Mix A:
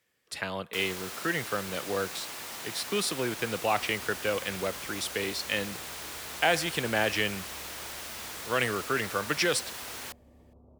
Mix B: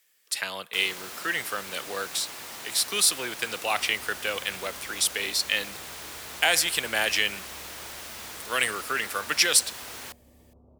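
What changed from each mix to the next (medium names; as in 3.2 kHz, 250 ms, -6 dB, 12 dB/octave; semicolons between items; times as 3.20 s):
speech: add tilt EQ +4 dB/octave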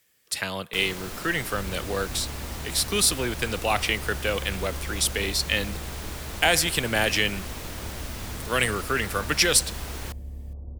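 second sound: entry -2.25 s; master: remove high-pass 840 Hz 6 dB/octave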